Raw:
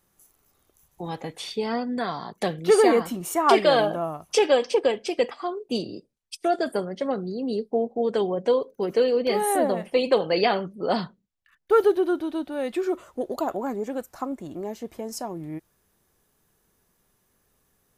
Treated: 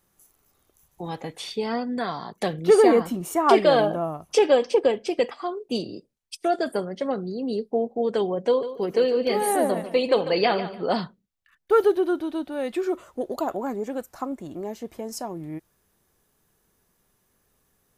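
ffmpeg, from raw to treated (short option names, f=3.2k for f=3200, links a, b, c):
-filter_complex "[0:a]asettb=1/sr,asplit=3[a][b][c];[a]atrim=end=2.534[d];[b]atrim=start=2.53:end=5.2,asetpts=PTS-STARTPTS,afade=t=in:d=0.004:c=qsin,afade=t=out:st=2.666:d=0.004:c=qsin,tiltshelf=f=890:g=3[e];[c]atrim=start=5.196[f];[d][e]acrossfade=d=0.004:c1=hsin:c2=qsin[g];[g][f]acrossfade=d=0.004:c1=qsin:c2=hsin,asettb=1/sr,asplit=3[h][i][j];[h]atrim=end=8.484[k];[i]atrim=start=8.48:end=10.86,asetpts=PTS-STARTPTS,afade=t=in:d=0.004:c=qsin,afade=t=out:st=2.376:d=0.004:c=qsin,aecho=1:1:146|292|438:0.251|0.0553|0.0122,atrim=end_sample=104958[l];[j]atrim=start=10.856[m];[k][l]acrossfade=d=0.004:c1=hsin:c2=qsin[n];[n][m]acrossfade=d=0.004:c1=qsin:c2=hsin"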